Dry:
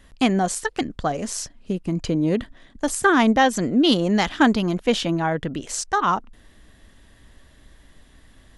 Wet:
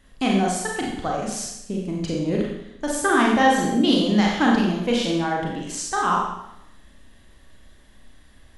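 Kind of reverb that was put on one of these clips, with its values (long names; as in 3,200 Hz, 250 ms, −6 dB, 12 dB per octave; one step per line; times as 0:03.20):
four-comb reverb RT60 0.82 s, combs from 30 ms, DRR −2.5 dB
level −5 dB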